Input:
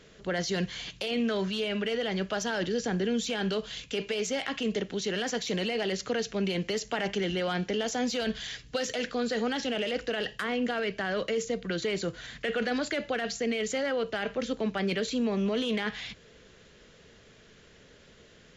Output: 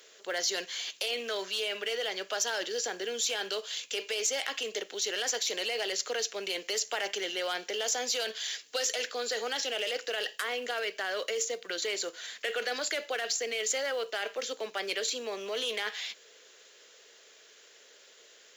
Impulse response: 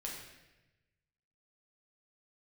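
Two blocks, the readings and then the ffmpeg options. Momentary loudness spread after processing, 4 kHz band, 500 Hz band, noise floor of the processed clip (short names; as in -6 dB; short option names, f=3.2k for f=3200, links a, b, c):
5 LU, +3.0 dB, -4.0 dB, -57 dBFS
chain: -filter_complex "[0:a]highpass=f=400:w=0.5412,highpass=f=400:w=1.3066,aemphasis=mode=production:type=75fm,asplit=2[a][b];[b]acrusher=bits=3:mode=log:mix=0:aa=0.000001,volume=-10dB[c];[a][c]amix=inputs=2:normalize=0,volume=-4.5dB"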